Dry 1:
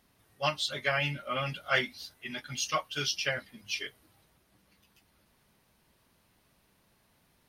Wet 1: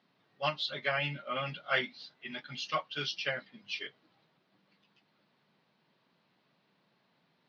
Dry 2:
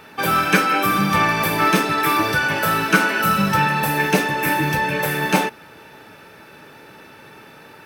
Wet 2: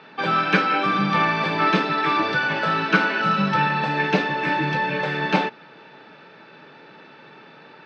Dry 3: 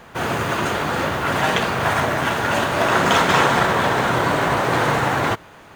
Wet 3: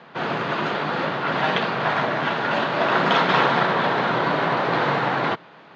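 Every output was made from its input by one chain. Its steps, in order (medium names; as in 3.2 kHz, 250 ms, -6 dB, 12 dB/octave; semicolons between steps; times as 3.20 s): elliptic band-pass 150–4300 Hz, stop band 50 dB; trim -2 dB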